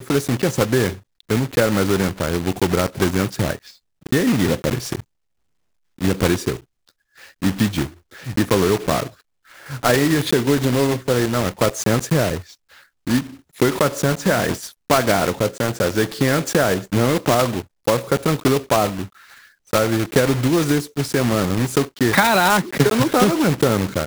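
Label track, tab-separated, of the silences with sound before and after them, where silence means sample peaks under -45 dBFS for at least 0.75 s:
5.020000	5.980000	silence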